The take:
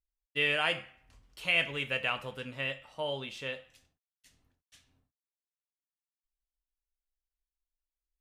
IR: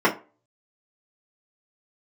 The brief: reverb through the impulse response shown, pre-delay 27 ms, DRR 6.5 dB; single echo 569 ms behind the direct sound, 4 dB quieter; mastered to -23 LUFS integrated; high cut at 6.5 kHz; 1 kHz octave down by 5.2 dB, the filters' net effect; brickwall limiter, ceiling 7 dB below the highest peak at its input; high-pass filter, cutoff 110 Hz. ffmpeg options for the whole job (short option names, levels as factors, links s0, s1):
-filter_complex "[0:a]highpass=110,lowpass=6500,equalizer=f=1000:t=o:g=-7.5,alimiter=limit=0.0944:level=0:latency=1,aecho=1:1:569:0.631,asplit=2[s0][s1];[1:a]atrim=start_sample=2205,adelay=27[s2];[s1][s2]afir=irnorm=-1:irlink=0,volume=0.0501[s3];[s0][s3]amix=inputs=2:normalize=0,volume=3.76"